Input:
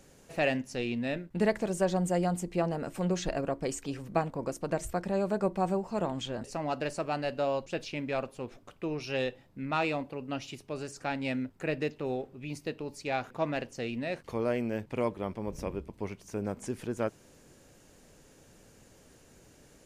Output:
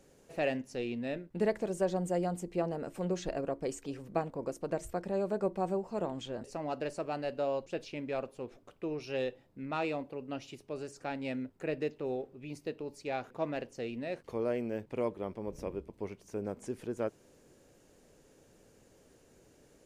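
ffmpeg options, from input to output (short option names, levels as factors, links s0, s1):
-af "equalizer=f=430:w=1:g=6,volume=0.447"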